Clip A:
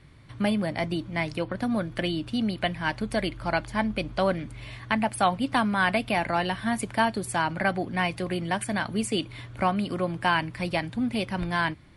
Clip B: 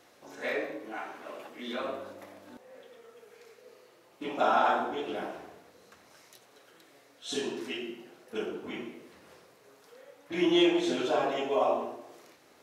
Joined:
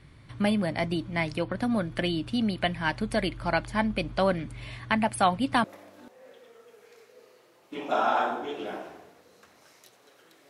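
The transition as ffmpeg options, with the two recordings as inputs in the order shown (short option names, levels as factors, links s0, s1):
-filter_complex "[0:a]apad=whole_dur=10.49,atrim=end=10.49,atrim=end=5.642[s0];[1:a]atrim=start=2.128:end=6.98[s1];[s0][s1]acrossfade=d=0.004:c1=hsin:c2=hsin"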